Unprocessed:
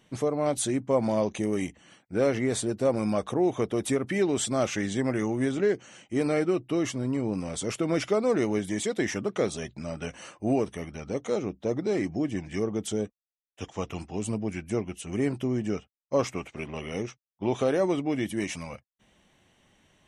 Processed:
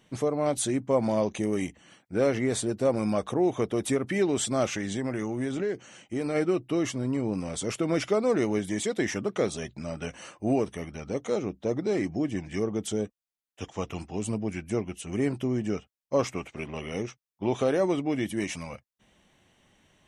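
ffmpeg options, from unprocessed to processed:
ffmpeg -i in.wav -filter_complex "[0:a]asplit=3[link_01][link_02][link_03];[link_01]afade=type=out:start_time=4.72:duration=0.02[link_04];[link_02]acompressor=threshold=-27dB:ratio=2.5:attack=3.2:release=140:knee=1:detection=peak,afade=type=in:start_time=4.72:duration=0.02,afade=type=out:start_time=6.34:duration=0.02[link_05];[link_03]afade=type=in:start_time=6.34:duration=0.02[link_06];[link_04][link_05][link_06]amix=inputs=3:normalize=0" out.wav

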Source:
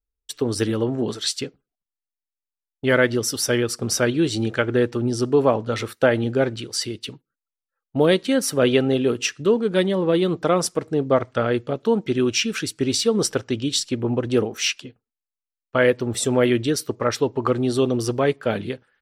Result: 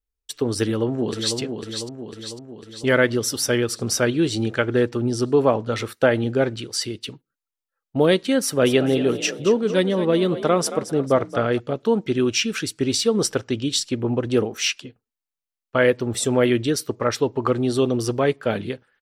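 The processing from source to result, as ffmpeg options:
ffmpeg -i in.wav -filter_complex "[0:a]asplit=2[link_01][link_02];[link_02]afade=type=in:start_time=0.62:duration=0.01,afade=type=out:start_time=1.38:duration=0.01,aecho=0:1:500|1000|1500|2000|2500|3000|3500|4000:0.473151|0.283891|0.170334|0.102201|0.0613204|0.0367922|0.0220753|0.0132452[link_03];[link_01][link_03]amix=inputs=2:normalize=0,asplit=3[link_04][link_05][link_06];[link_04]afade=type=out:start_time=8.65:duration=0.02[link_07];[link_05]asplit=5[link_08][link_09][link_10][link_11][link_12];[link_09]adelay=224,afreqshift=41,volume=-12.5dB[link_13];[link_10]adelay=448,afreqshift=82,volume=-20.7dB[link_14];[link_11]adelay=672,afreqshift=123,volume=-28.9dB[link_15];[link_12]adelay=896,afreqshift=164,volume=-37dB[link_16];[link_08][link_13][link_14][link_15][link_16]amix=inputs=5:normalize=0,afade=type=in:start_time=8.65:duration=0.02,afade=type=out:start_time=11.58:duration=0.02[link_17];[link_06]afade=type=in:start_time=11.58:duration=0.02[link_18];[link_07][link_17][link_18]amix=inputs=3:normalize=0" out.wav

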